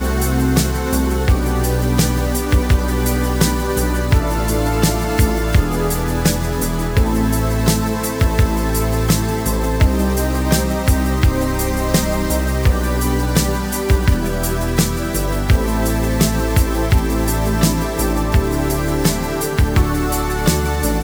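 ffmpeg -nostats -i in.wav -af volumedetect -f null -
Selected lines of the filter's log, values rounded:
mean_volume: -16.1 dB
max_volume: -1.3 dB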